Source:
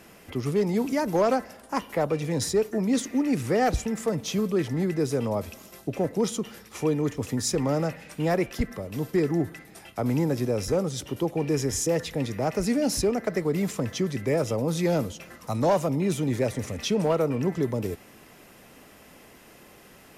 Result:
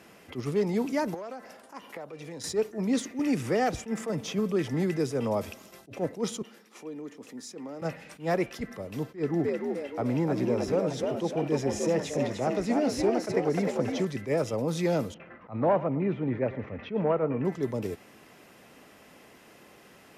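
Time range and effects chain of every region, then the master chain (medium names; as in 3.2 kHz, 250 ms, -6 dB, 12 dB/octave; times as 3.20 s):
1.14–2.44 s: high-pass 230 Hz 6 dB/octave + compression 8:1, threshold -34 dBFS
3.19–5.53 s: band-stop 4.1 kHz, Q 13 + three bands compressed up and down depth 70%
6.42–7.82 s: compression 2.5:1, threshold -30 dBFS + ladder high-pass 180 Hz, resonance 30%
9.03–14.05 s: treble shelf 5.8 kHz -10 dB + frequency-shifting echo 303 ms, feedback 47%, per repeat +68 Hz, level -4.5 dB
15.14–17.45 s: low-pass 2.3 kHz 24 dB/octave + delay 112 ms -17 dB
whole clip: high-pass 130 Hz 6 dB/octave; treble shelf 9.3 kHz -9 dB; attacks held to a fixed rise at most 240 dB/s; trim -1.5 dB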